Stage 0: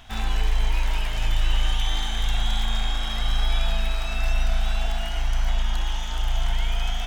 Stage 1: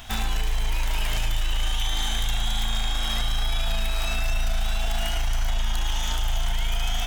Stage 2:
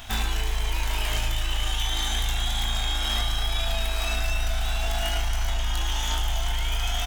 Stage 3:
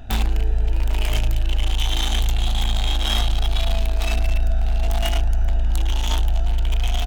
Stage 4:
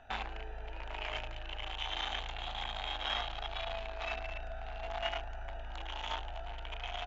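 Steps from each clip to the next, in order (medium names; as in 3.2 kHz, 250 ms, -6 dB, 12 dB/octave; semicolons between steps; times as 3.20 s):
peak limiter -22 dBFS, peak gain reduction 10.5 dB; treble shelf 6.6 kHz +11.5 dB; trim +5 dB
doubling 21 ms -6 dB
local Wiener filter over 41 samples; trim +7.5 dB
three-band isolator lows -20 dB, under 530 Hz, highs -21 dB, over 3 kHz; trim -5.5 dB; MP2 96 kbps 24 kHz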